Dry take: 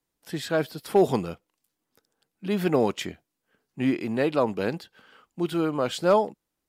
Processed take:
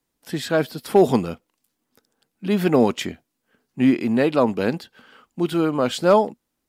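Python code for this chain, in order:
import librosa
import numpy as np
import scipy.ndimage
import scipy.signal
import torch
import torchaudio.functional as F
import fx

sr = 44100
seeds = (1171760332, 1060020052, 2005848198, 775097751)

y = fx.peak_eq(x, sr, hz=240.0, db=7.0, octaves=0.24)
y = y * librosa.db_to_amplitude(4.5)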